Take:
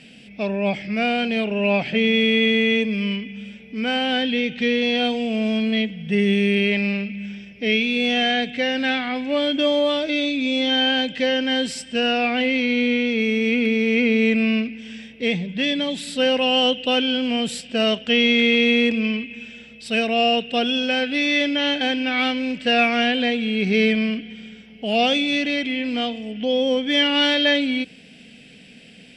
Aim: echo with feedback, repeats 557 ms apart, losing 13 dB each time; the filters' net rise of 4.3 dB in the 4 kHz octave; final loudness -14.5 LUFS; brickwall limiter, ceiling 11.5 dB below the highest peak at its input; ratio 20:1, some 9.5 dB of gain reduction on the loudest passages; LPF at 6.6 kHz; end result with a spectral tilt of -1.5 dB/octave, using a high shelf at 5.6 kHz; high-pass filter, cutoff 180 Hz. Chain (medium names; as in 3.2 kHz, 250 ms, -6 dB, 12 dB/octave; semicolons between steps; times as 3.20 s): high-pass 180 Hz; low-pass 6.6 kHz; peaking EQ 4 kHz +5 dB; treble shelf 5.6 kHz +4.5 dB; compression 20:1, threshold -21 dBFS; peak limiter -23 dBFS; feedback delay 557 ms, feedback 22%, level -13 dB; trim +16 dB